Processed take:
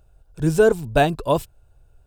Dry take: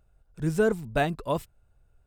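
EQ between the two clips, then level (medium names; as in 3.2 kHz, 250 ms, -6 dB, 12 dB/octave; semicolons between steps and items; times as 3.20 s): graphic EQ with 31 bands 200 Hz -10 dB, 1.25 kHz -5 dB, 2 kHz -9 dB; +9.0 dB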